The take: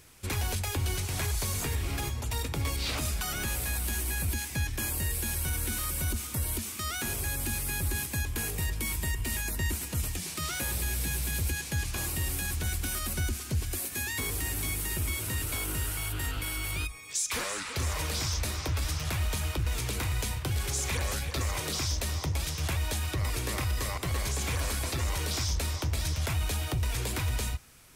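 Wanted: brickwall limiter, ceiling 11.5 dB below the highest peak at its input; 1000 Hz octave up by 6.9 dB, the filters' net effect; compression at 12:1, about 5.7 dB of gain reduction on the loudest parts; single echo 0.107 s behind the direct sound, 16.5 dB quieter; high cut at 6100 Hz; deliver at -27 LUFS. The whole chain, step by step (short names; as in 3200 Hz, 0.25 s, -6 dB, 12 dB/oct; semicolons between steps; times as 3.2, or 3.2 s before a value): LPF 6100 Hz; bell 1000 Hz +8.5 dB; compressor 12:1, threshold -31 dBFS; limiter -32.5 dBFS; echo 0.107 s -16.5 dB; gain +13.5 dB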